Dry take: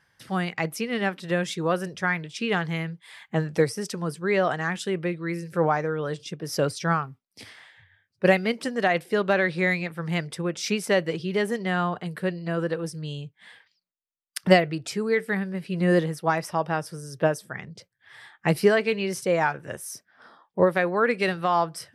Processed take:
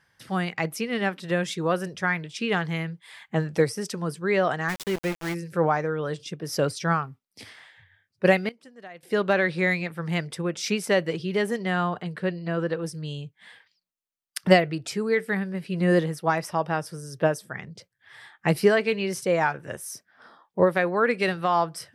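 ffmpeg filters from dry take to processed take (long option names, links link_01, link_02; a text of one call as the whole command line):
ffmpeg -i in.wav -filter_complex "[0:a]asplit=3[link_01][link_02][link_03];[link_01]afade=type=out:start_time=4.68:duration=0.02[link_04];[link_02]aeval=exprs='val(0)*gte(abs(val(0)),0.0335)':channel_layout=same,afade=type=in:start_time=4.68:duration=0.02,afade=type=out:start_time=5.33:duration=0.02[link_05];[link_03]afade=type=in:start_time=5.33:duration=0.02[link_06];[link_04][link_05][link_06]amix=inputs=3:normalize=0,asettb=1/sr,asplit=3[link_07][link_08][link_09];[link_07]atrim=end=12.034[link_10];[link_08]atrim=start=12.03:end=12.82,asetpts=PTS-STARTPTS,afade=type=in:duration=0.004:curve=qsin,afade=type=out:start_time=0.786:duration=0.004:curve=qsin,lowpass=5900[link_11];[link_09]atrim=start=12.816[link_12];[link_10][link_11]acrossfade=duration=0.004:curve1=hsin:curve2=qsin[link_13];[link_13][link_12]acrossfade=duration=0.004:curve1=qsin:curve2=hsin,asplit=3[link_14][link_15][link_16];[link_14]atrim=end=8.49,asetpts=PTS-STARTPTS,afade=type=out:start_time=8.31:duration=0.18:curve=log:silence=0.0944061[link_17];[link_15]atrim=start=8.49:end=9.03,asetpts=PTS-STARTPTS,volume=-20.5dB[link_18];[link_16]atrim=start=9.03,asetpts=PTS-STARTPTS,afade=type=in:duration=0.18:curve=log:silence=0.0944061[link_19];[link_17][link_18][link_19]concat=n=3:v=0:a=1" out.wav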